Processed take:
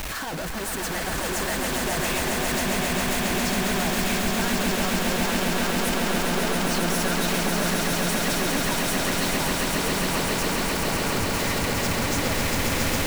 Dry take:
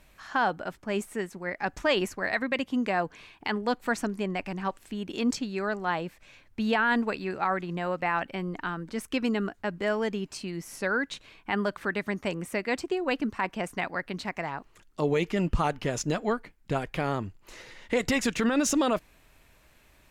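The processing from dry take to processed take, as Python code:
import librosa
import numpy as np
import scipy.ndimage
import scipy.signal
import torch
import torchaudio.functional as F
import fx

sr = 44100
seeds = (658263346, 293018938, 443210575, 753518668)

y = np.sign(x) * np.sqrt(np.mean(np.square(x)))
y = fx.stretch_grains(y, sr, factor=0.65, grain_ms=114.0)
y = fx.echo_swell(y, sr, ms=136, loudest=8, wet_db=-5.0)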